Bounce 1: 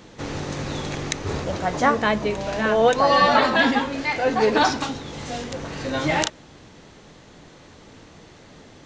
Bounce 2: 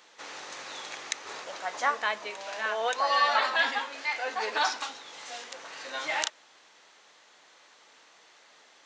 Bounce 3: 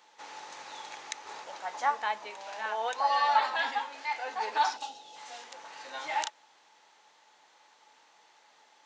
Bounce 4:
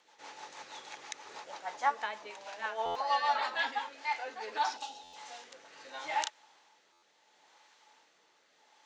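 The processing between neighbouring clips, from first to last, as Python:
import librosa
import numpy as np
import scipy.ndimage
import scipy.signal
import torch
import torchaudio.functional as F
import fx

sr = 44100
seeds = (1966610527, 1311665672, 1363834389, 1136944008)

y1 = scipy.signal.sosfilt(scipy.signal.butter(2, 900.0, 'highpass', fs=sr, output='sos'), x)
y1 = y1 * librosa.db_to_amplitude(-5.0)
y2 = fx.peak_eq(y1, sr, hz=860.0, db=12.5, octaves=0.22)
y2 = fx.spec_box(y2, sr, start_s=4.77, length_s=0.39, low_hz=880.0, high_hz=2500.0, gain_db=-12)
y2 = y2 * librosa.db_to_amplitude(-6.0)
y3 = fx.rotary_switch(y2, sr, hz=6.3, then_hz=0.75, switch_at_s=3.46)
y3 = fx.buffer_glitch(y3, sr, at_s=(2.85, 5.03, 6.92), block=512, repeats=8)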